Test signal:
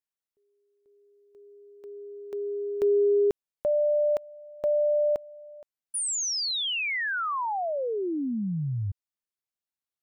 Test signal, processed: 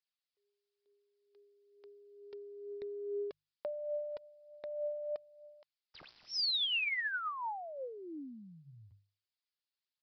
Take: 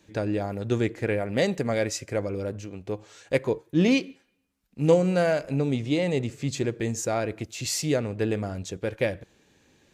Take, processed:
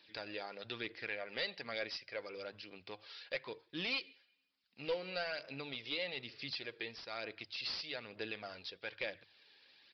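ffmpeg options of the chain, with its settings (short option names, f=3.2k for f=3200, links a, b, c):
-af "aderivative,bandreject=f=50:t=h:w=6,bandreject=f=100:t=h:w=6,bandreject=f=150:t=h:w=6,acompressor=threshold=-53dB:ratio=1.5:attack=8.6:release=559:detection=peak,aphaser=in_gain=1:out_gain=1:delay=2.5:decay=0.37:speed=1.1:type=triangular,asoftclip=type=hard:threshold=-39dB,aresample=11025,aresample=44100,volume=9.5dB"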